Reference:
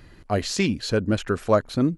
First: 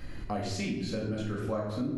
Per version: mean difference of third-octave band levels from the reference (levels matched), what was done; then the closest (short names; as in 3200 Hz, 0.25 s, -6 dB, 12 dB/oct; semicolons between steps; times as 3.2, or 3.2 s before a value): 8.5 dB: low shelf 140 Hz +3.5 dB; shoebox room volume 370 m³, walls mixed, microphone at 2.1 m; compressor 4:1, threshold -34 dBFS, peak gain reduction 21 dB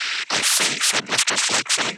15.5 dB: noise vocoder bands 12; resonant high-pass 2200 Hz, resonance Q 4.4; spectral compressor 10:1; gain +2.5 dB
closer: first